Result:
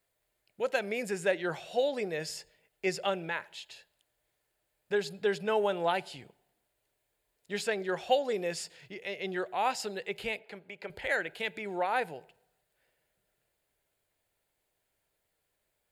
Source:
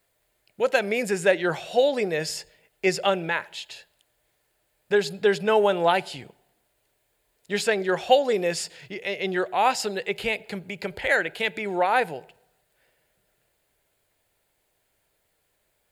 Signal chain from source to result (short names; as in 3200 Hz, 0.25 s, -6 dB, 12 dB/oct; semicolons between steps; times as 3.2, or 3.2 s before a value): 10.39–10.9 tone controls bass -13 dB, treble -10 dB; gain -8.5 dB